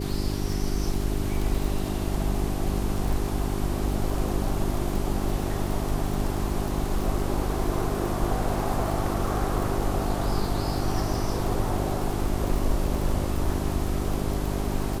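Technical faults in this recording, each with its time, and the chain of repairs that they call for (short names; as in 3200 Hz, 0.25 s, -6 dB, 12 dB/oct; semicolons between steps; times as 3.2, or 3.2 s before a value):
crackle 41/s -29 dBFS
hum 50 Hz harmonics 8 -30 dBFS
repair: de-click; de-hum 50 Hz, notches 8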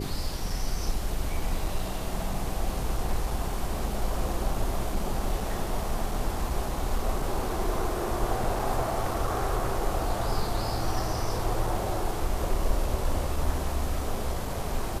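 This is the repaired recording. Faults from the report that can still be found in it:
none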